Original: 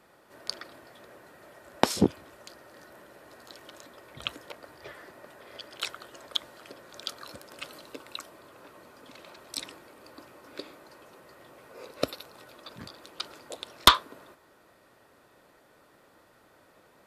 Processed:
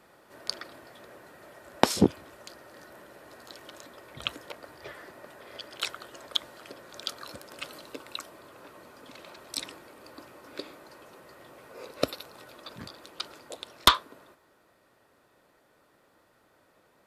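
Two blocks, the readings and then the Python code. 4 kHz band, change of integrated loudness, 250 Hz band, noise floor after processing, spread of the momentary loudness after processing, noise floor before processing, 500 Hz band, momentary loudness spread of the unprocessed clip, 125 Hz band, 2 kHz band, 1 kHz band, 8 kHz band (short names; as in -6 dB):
-1.0 dB, -1.5 dB, +1.5 dB, -65 dBFS, 24 LU, -61 dBFS, +1.0 dB, 23 LU, +1.0 dB, -0.5 dB, -1.0 dB, 0.0 dB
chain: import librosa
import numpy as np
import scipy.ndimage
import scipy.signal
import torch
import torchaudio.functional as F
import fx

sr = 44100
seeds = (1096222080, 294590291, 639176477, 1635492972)

y = fx.rider(x, sr, range_db=3, speed_s=2.0)
y = F.gain(torch.from_numpy(y), -1.5).numpy()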